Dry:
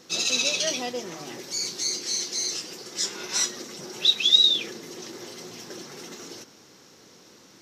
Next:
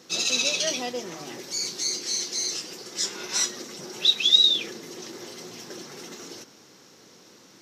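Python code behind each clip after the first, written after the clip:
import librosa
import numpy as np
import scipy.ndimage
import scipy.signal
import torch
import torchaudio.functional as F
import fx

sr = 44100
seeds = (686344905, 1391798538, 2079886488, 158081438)

y = scipy.signal.sosfilt(scipy.signal.butter(2, 90.0, 'highpass', fs=sr, output='sos'), x)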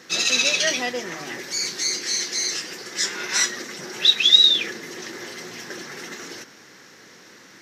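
y = fx.peak_eq(x, sr, hz=1800.0, db=12.0, octaves=0.78)
y = y * librosa.db_to_amplitude(2.5)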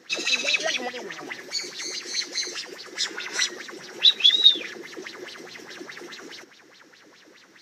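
y = fx.bell_lfo(x, sr, hz=4.8, low_hz=300.0, high_hz=4200.0, db=16)
y = y * librosa.db_to_amplitude(-10.0)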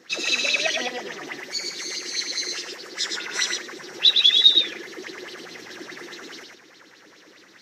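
y = x + 10.0 ** (-4.0 / 20.0) * np.pad(x, (int(112 * sr / 1000.0), 0))[:len(x)]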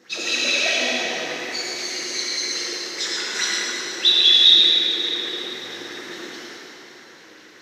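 y = fx.rev_plate(x, sr, seeds[0], rt60_s=3.3, hf_ratio=0.85, predelay_ms=0, drr_db=-5.0)
y = y * librosa.db_to_amplitude(-2.5)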